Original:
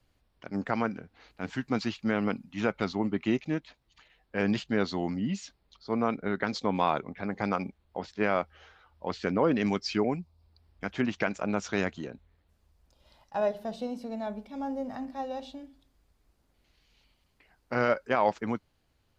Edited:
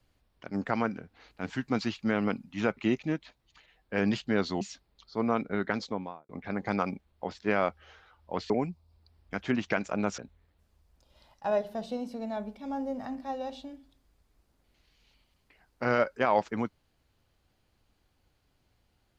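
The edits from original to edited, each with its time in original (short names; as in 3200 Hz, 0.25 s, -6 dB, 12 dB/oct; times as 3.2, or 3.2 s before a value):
2.77–3.19 cut
5.03–5.34 cut
6.39–7.02 studio fade out
9.23–10 cut
11.68–12.08 cut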